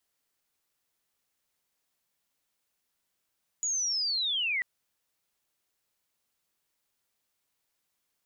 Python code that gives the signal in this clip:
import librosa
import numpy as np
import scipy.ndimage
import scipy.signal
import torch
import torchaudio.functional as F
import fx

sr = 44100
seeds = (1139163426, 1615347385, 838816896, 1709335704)

y = fx.chirp(sr, length_s=0.99, from_hz=6900.0, to_hz=1900.0, law='linear', from_db=-27.0, to_db=-26.5)